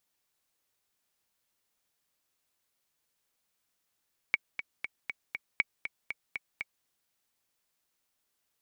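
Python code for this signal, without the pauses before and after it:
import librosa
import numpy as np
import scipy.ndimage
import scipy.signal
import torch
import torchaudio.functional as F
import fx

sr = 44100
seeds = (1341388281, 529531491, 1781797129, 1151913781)

y = fx.click_track(sr, bpm=238, beats=5, bars=2, hz=2250.0, accent_db=10.0, level_db=-11.5)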